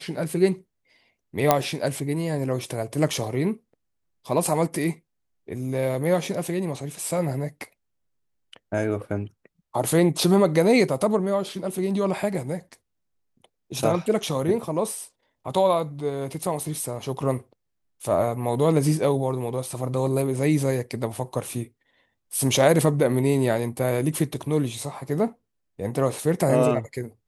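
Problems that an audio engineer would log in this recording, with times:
1.51 pop -2 dBFS

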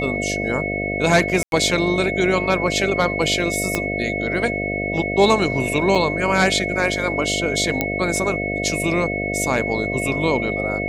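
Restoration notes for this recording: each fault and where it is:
buzz 50 Hz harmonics 14 -26 dBFS
tone 2200 Hz -25 dBFS
1.43–1.52 gap 92 ms
3.75 pop -5 dBFS
5.95 gap 4.9 ms
7.81 pop -5 dBFS

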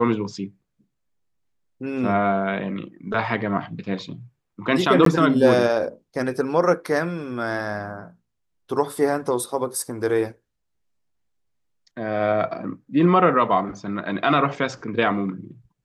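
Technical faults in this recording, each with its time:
5.05–5.06 gap 13 ms

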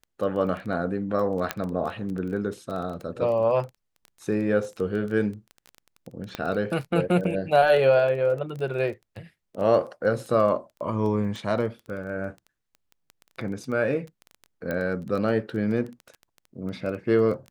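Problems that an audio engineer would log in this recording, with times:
crackle 14/s -32 dBFS
1.51 pop -9 dBFS
6.35 pop -15 dBFS
14.71 pop -17 dBFS

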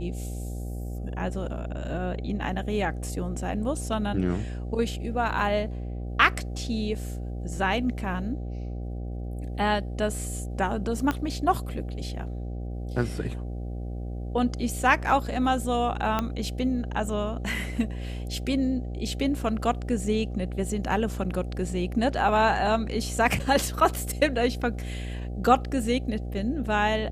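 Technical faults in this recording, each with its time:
buzz 60 Hz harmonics 13 -33 dBFS
11.11 pop -13 dBFS
16.19 pop -12 dBFS

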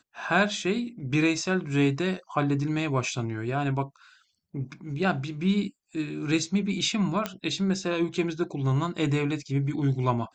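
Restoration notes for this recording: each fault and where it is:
7.26 pop -13 dBFS

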